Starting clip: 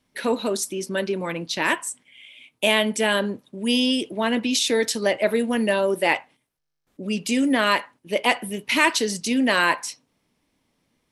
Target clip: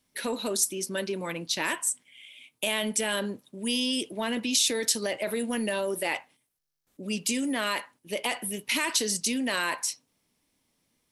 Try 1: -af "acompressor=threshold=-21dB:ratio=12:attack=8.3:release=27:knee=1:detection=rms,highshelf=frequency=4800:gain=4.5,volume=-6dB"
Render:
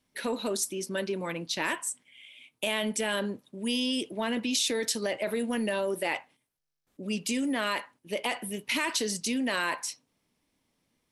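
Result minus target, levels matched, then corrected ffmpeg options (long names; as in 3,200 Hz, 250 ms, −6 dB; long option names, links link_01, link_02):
8,000 Hz band −3.5 dB
-af "acompressor=threshold=-21dB:ratio=12:attack=8.3:release=27:knee=1:detection=rms,highshelf=frequency=4800:gain=12,volume=-6dB"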